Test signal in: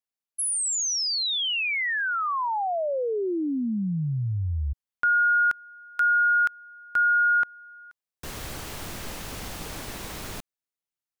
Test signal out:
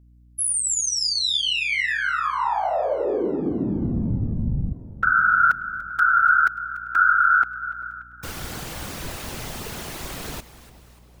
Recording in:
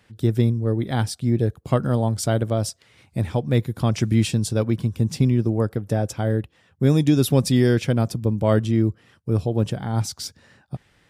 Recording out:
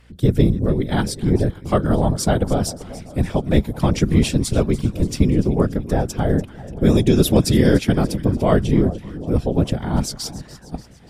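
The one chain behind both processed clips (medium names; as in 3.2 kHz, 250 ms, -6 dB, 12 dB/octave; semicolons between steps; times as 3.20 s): two-band feedback delay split 950 Hz, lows 392 ms, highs 291 ms, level -16 dB; whisper effect; mains buzz 60 Hz, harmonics 5, -55 dBFS -8 dB/octave; trim +3 dB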